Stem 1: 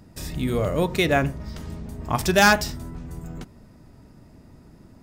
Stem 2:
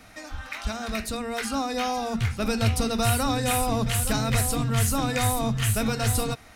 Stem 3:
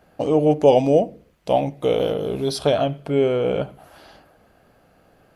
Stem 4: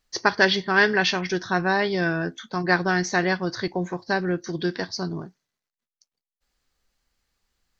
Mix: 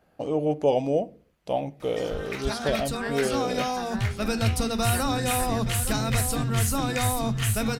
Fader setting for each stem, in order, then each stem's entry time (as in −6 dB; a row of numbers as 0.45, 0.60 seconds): muted, −1.0 dB, −8.0 dB, −17.5 dB; muted, 1.80 s, 0.00 s, 2.25 s